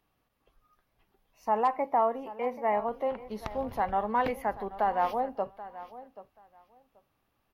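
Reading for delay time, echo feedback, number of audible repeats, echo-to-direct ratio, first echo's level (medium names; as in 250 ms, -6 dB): 782 ms, 17%, 2, -16.0 dB, -16.0 dB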